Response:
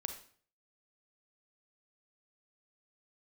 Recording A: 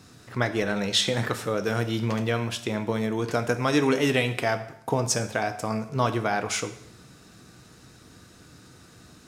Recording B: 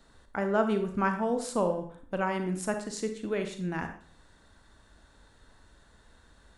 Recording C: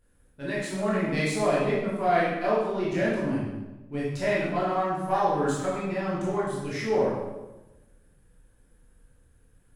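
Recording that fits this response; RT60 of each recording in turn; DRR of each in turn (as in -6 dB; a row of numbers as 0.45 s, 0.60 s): B; 0.70 s, 0.50 s, 1.1 s; 8.0 dB, 6.5 dB, -8.0 dB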